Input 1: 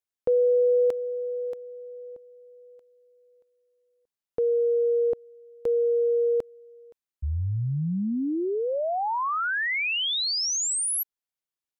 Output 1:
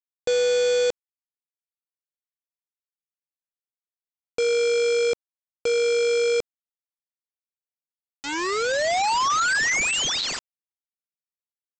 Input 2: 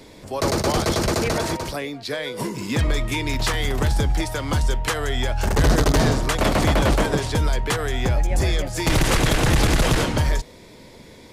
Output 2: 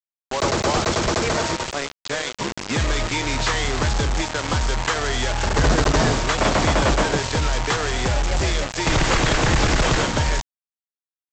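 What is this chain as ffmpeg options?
ffmpeg -i in.wav -af "equalizer=frequency=1200:width_type=o:width=2.2:gain=5,aresample=16000,acrusher=bits=3:mix=0:aa=0.000001,aresample=44100,volume=-2dB" out.wav

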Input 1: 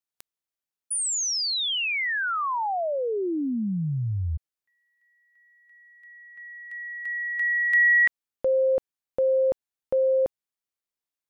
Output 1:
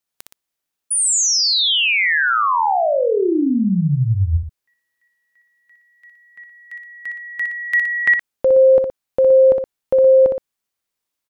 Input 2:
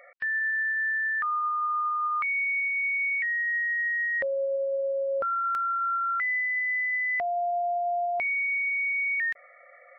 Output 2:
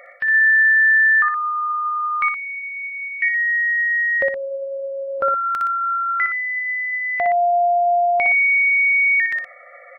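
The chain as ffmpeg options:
ffmpeg -i in.wav -af "aecho=1:1:61.22|119.5:0.562|0.316,volume=8.5dB" out.wav

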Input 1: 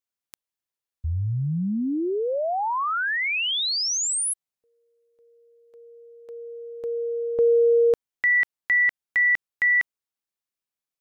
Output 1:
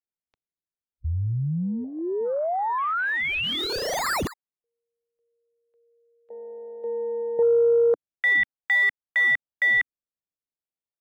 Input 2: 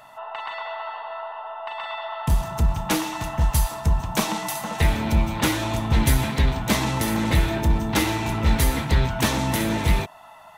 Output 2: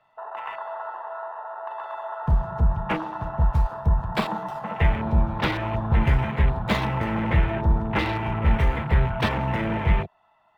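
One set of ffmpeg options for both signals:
ffmpeg -i in.wav -filter_complex "[0:a]afwtdn=0.0282,equalizer=frequency=280:width=4.3:gain=-12,acrossover=split=190|1000|4200[link_01][link_02][link_03][link_04];[link_04]acrusher=samples=28:mix=1:aa=0.000001:lfo=1:lforange=28:lforate=0.42[link_05];[link_01][link_02][link_03][link_05]amix=inputs=4:normalize=0" -ar 48000 -c:a libmp3lame -b:a 256k out.mp3

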